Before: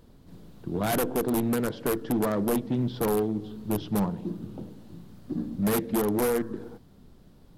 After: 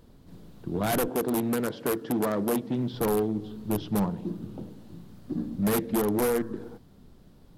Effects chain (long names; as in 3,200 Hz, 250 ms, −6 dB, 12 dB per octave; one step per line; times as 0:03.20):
0:01.08–0:02.94: high-pass filter 140 Hz 6 dB per octave